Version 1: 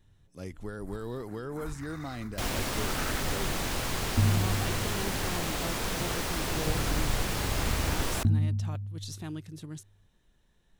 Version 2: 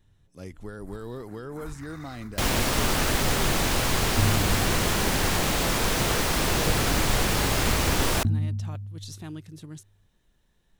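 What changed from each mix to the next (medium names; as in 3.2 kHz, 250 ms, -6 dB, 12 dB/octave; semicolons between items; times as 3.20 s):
second sound +7.5 dB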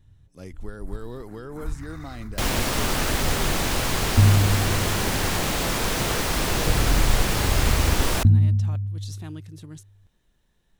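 first sound: add bass shelf 200 Hz +11.5 dB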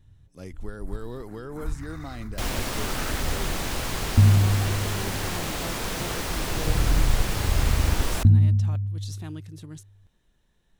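second sound -5.5 dB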